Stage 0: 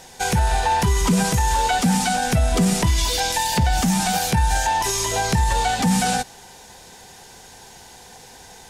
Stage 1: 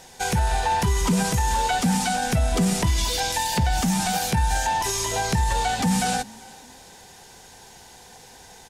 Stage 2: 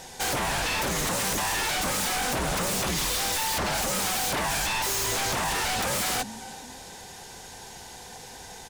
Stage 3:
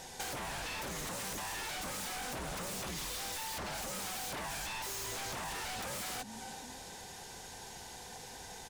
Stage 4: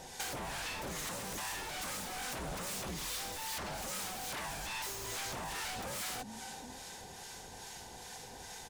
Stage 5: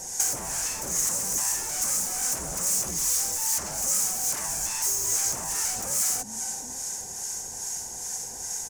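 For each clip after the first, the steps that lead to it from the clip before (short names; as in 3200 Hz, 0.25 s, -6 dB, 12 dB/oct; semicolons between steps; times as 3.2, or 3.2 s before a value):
frequency-shifting echo 0.389 s, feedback 37%, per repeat +32 Hz, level -24 dB; gain -3 dB
wavefolder -26 dBFS; gain +3.5 dB
compressor 10:1, threshold -33 dBFS, peak gain reduction 8 dB; gain -5 dB
harmonic tremolo 2.4 Hz, depth 50%, crossover 940 Hz; gain +2 dB
resonant high shelf 4900 Hz +10.5 dB, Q 3; gain +3.5 dB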